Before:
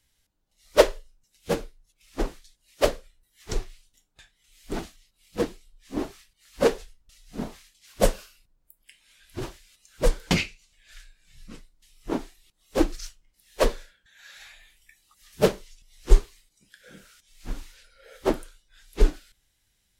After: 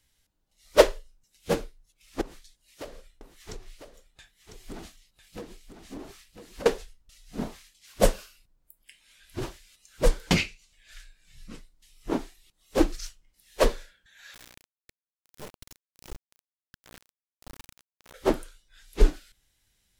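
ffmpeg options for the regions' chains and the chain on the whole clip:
ffmpeg -i in.wav -filter_complex "[0:a]asettb=1/sr,asplit=3[link_01][link_02][link_03];[link_01]atrim=end=2.214[link_04];[link_02]atrim=start=2.21:end=6.66,asetpts=PTS-STARTPTS,afade=type=in:duration=0.004:curve=qsin,afade=type=out:start_time=4.446:duration=0.004:curve=qsin,acompressor=threshold=-35dB:ratio=16:attack=3.2:release=140:knee=1:detection=peak,aecho=1:1:1000:0.398,atrim=end_sample=196245[link_05];[link_03]atrim=start=6.656[link_06];[link_04][link_05]acrossfade=duration=0.004:curve1=hsin:curve2=qsin[link_07];[link_07][link_06]acrossfade=duration=0.004:curve1=qsin:curve2=hsin,asettb=1/sr,asplit=3[link_08][link_09][link_10];[link_08]atrim=end=14.344[link_11];[link_09]atrim=start=14.34:end=18.14,asetpts=PTS-STARTPTS,afade=type=in:duration=0.004:curve=qsin,afade=type=out:start_time=3.796:duration=0.004:curve=qsin,aeval=exprs='val(0)+0.00282*(sin(2*PI*60*n/s)+sin(2*PI*2*60*n/s)/2+sin(2*PI*3*60*n/s)/3+sin(2*PI*4*60*n/s)/4+sin(2*PI*5*60*n/s)/5)':channel_layout=same,acompressor=threshold=-42dB:ratio=3:attack=3.2:release=140:knee=1:detection=peak,acrusher=bits=4:dc=4:mix=0:aa=0.000001[link_12];[link_10]atrim=start=18.136[link_13];[link_11][link_12]acrossfade=duration=0.004:curve1=hsin:curve2=qsin[link_14];[link_14][link_13]acrossfade=duration=0.004:curve1=qsin:curve2=hsin" out.wav

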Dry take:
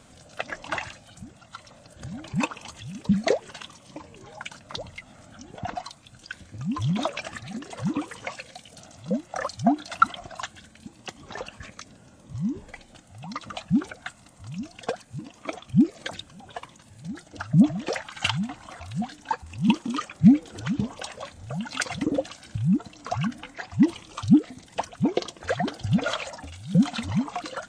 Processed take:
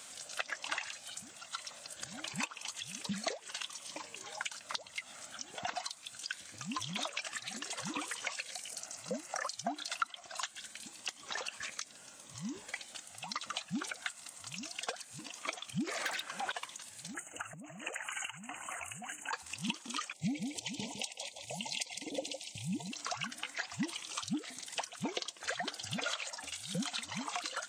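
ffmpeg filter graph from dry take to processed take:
ffmpeg -i in.wav -filter_complex "[0:a]asettb=1/sr,asplit=3[link_01][link_02][link_03];[link_01]atrim=end=8.524[link_04];[link_02]atrim=start=8.52:end=9.49,asetpts=PTS-STARTPTS,afade=type=in:duration=0.004:curve=qsin,afade=type=out:start_time=0.966:duration=0.004:curve=qsin,equalizer=frequency=3500:width_type=o:width=0.37:gain=-11,acompressor=mode=upward:threshold=-43dB:ratio=2.5:attack=3.2:release=140:knee=2.83:detection=peak[link_05];[link_03]atrim=start=9.486[link_06];[link_04][link_05]acrossfade=duration=0.004:curve1=hsin:curve2=qsin[link_07];[link_07][link_06]acrossfade=duration=0.004:curve1=qsin:curve2=hsin,asettb=1/sr,asplit=3[link_08][link_09][link_10];[link_08]atrim=end=15.874[link_11];[link_09]atrim=start=15.87:end=16.52,asetpts=PTS-STARTPTS,afade=type=in:duration=0.004:curve=qsin,afade=type=out:start_time=0.646:duration=0.004:curve=qsin,highshelf=frequency=2400:width_type=q:width=1.5:gain=-6,asplit=2[link_12][link_13];[link_13]highpass=frequency=720:poles=1,volume=27dB,asoftclip=type=tanh:threshold=-18dB[link_14];[link_12][link_14]amix=inputs=2:normalize=0,lowpass=frequency=2900:poles=1,volume=-6dB[link_15];[link_10]atrim=start=16.516[link_16];[link_11][link_15]acrossfade=duration=0.004:curve1=hsin:curve2=qsin[link_17];[link_17][link_16]acrossfade=duration=0.004:curve1=qsin:curve2=hsin,asettb=1/sr,asplit=3[link_18][link_19][link_20];[link_18]atrim=end=17.144[link_21];[link_19]atrim=start=17.14:end=19.33,asetpts=PTS-STARTPTS,afade=type=in:duration=0.004:curve=qsin,afade=type=out:start_time=2.186:duration=0.004:curve=qsin,aphaser=in_gain=1:out_gain=1:delay=2.7:decay=0.23:speed=1.4:type=sinusoidal,acompressor=threshold=-33dB:ratio=20:attack=3.2:release=140:knee=1:detection=peak,asuperstop=centerf=4400:order=20:qfactor=1.3[link_22];[link_20]atrim=start=19.326[link_23];[link_21][link_22]acrossfade=duration=0.004:curve1=hsin:curve2=qsin[link_24];[link_24][link_23]acrossfade=duration=0.004:curve1=qsin:curve2=hsin,asettb=1/sr,asplit=3[link_25][link_26][link_27];[link_25]atrim=end=20.134[link_28];[link_26]atrim=start=20.13:end=22.92,asetpts=PTS-STARTPTS,afade=type=in:duration=0.004:curve=qsin,afade=type=out:start_time=2.786:duration=0.004:curve=qsin,agate=range=-7dB:threshold=-42dB:ratio=16:release=100:detection=peak,asuperstop=centerf=1400:order=12:qfactor=1.3,aecho=1:1:157:0.335,atrim=end_sample=123039[link_29];[link_27]atrim=start=22.916[link_30];[link_28][link_29]acrossfade=duration=0.004:curve1=hsin:curve2=qsin[link_31];[link_31][link_30]acrossfade=duration=0.004:curve1=qsin:curve2=hsin,aderivative,acompressor=threshold=-49dB:ratio=5,highshelf=frequency=3900:gain=-8.5,volume=16.5dB" out.wav

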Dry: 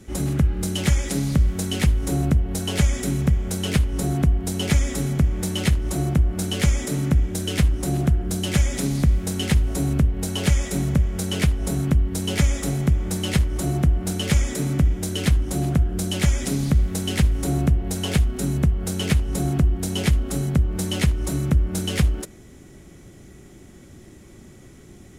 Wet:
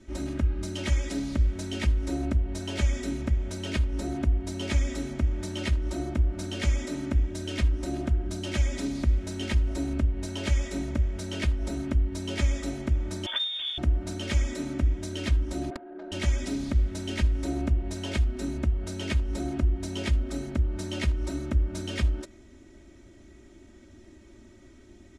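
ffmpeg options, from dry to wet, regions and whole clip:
ffmpeg -i in.wav -filter_complex "[0:a]asettb=1/sr,asplit=3[link_01][link_02][link_03];[link_01]atrim=end=13.264[link_04];[link_02]atrim=start=13.26:end=13.78,asetpts=PTS-STARTPTS,afade=type=in:duration=0.004:curve=qsin,afade=type=out:start_time=0.516:duration=0.004:curve=qsin,bandreject=frequency=210:width=6.5,lowpass=frequency=3100:width_type=q:width=0.5098,lowpass=frequency=3100:width_type=q:width=0.6013,lowpass=frequency=3100:width_type=q:width=0.9,lowpass=frequency=3100:width_type=q:width=2.563,afreqshift=-3700,acrusher=bits=7:mode=log:mix=0:aa=0.000001[link_05];[link_03]atrim=start=13.776[link_06];[link_04][link_05]acrossfade=duration=0.004:curve1=hsin:curve2=qsin[link_07];[link_07][link_06]acrossfade=duration=0.004:curve1=qsin:curve2=hsin,asettb=1/sr,asplit=3[link_08][link_09][link_10];[link_08]atrim=end=15.704[link_11];[link_09]atrim=start=15.7:end=16.12,asetpts=PTS-STARTPTS,afade=type=in:duration=0.004:curve=qsin,afade=type=out:start_time=0.416:duration=0.004:curve=qsin,highpass=frequency=320:width=0.5412,highpass=frequency=320:width=1.3066,equalizer=frequency=760:width_type=q:width=4:gain=8,equalizer=frequency=1600:width_type=q:width=4:gain=9,equalizer=frequency=5800:width_type=q:width=4:gain=-7,lowpass=frequency=6800:width=0.5412,lowpass=frequency=6800:width=1.3066,adynamicsmooth=sensitivity=1:basefreq=750,aeval=exprs='(mod(7.94*val(0)+1,2)-1)/7.94':channel_layout=same[link_12];[link_10]atrim=start=16.116[link_13];[link_11][link_12]acrossfade=duration=0.004:curve1=hsin:curve2=qsin[link_14];[link_14][link_13]acrossfade=duration=0.004:curve1=qsin:curve2=hsin,lowpass=6000,aecho=1:1:3.2:0.99,volume=-9dB" out.wav

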